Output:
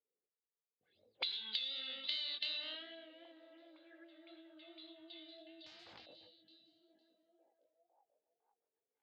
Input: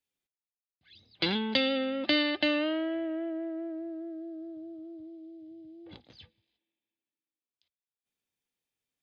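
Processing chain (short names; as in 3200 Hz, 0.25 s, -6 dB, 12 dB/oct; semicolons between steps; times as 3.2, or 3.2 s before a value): bin magnitudes rounded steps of 15 dB; in parallel at -6 dB: soft clip -26 dBFS, distortion -11 dB; on the sum: chorus 2.7 Hz, delay 18 ms, depth 5.1 ms; auto-wah 450–3900 Hz, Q 7.5, up, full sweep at -32.5 dBFS; on a send: delay with a stepping band-pass 0.507 s, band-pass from 170 Hz, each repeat 0.7 oct, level -10 dB; on the sum: compressor 10:1, threshold -47 dBFS, peak gain reduction 14.5 dB; 5.66–6.06 spectral compressor 4:1; gain +10.5 dB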